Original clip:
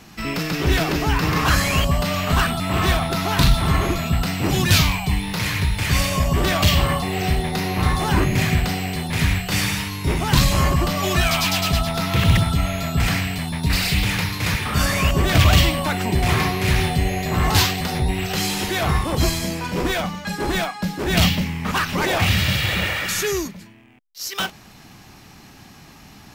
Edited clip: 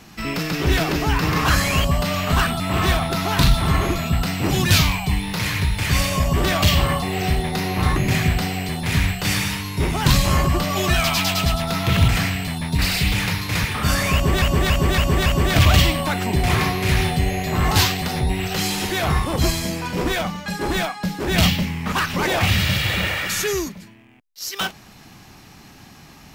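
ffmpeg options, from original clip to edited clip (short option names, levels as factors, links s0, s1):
-filter_complex "[0:a]asplit=7[s0][s1][s2][s3][s4][s5][s6];[s0]atrim=end=7.962[s7];[s1]atrim=start=8.228:end=12.352[s8];[s2]atrim=start=12.988:end=15.332[s9];[s3]atrim=start=15.048:end=15.332[s10];[s4]atrim=start=15.048:end=15.332[s11];[s5]atrim=start=15.048:end=15.332[s12];[s6]atrim=start=15.048[s13];[s7][s8]acrossfade=d=0.004:c1=hsin:c2=hsin[s14];[s14][s9]acrossfade=d=0.004:c1=hsin:c2=hsin[s15];[s15][s10]acrossfade=d=0.004:c1=hsin:c2=hsin[s16];[s16][s11]acrossfade=d=0.004:c1=hsin:c2=hsin[s17];[s17][s12]acrossfade=d=0.004:c1=hsin:c2=hsin[s18];[s18][s13]acrossfade=d=0.004:c1=hsin:c2=hsin"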